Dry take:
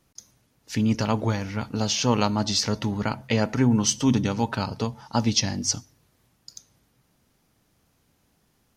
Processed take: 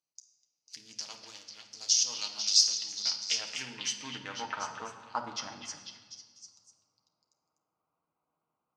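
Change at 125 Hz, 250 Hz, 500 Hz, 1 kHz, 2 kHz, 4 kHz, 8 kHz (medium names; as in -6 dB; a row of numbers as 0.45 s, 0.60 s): -32.0 dB, -28.0 dB, -20.5 dB, -10.5 dB, -8.0 dB, -0.5 dB, -2.0 dB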